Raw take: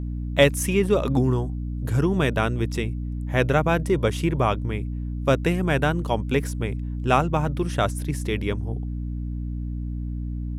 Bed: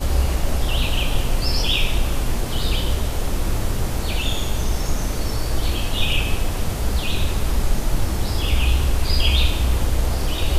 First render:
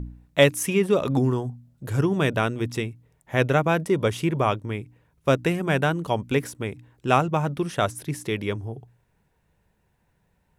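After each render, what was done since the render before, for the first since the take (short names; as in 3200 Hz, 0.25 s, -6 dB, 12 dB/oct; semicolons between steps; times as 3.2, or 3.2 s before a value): de-hum 60 Hz, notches 5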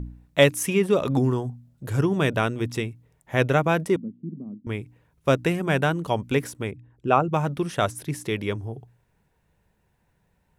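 3.96–4.67 Butterworth band-pass 220 Hz, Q 2.7; 6.71–7.33 formant sharpening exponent 1.5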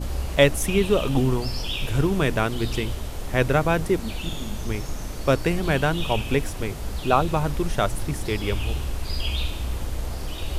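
add bed -9 dB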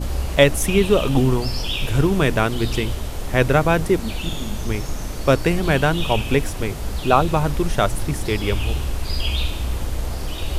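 gain +4 dB; limiter -1 dBFS, peak gain reduction 2.5 dB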